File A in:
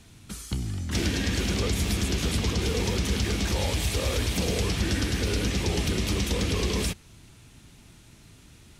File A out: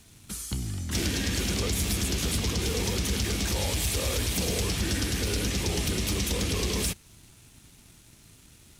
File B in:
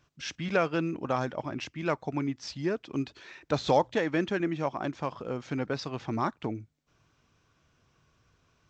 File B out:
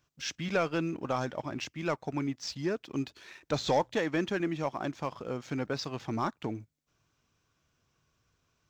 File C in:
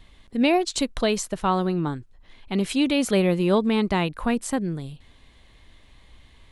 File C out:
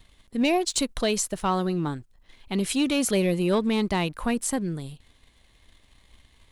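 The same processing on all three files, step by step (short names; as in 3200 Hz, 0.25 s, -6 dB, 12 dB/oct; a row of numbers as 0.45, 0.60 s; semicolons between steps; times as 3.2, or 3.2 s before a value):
high shelf 6400 Hz +10.5 dB; sample leveller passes 1; gain -5.5 dB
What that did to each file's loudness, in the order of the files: -1.0, -2.0, -2.0 LU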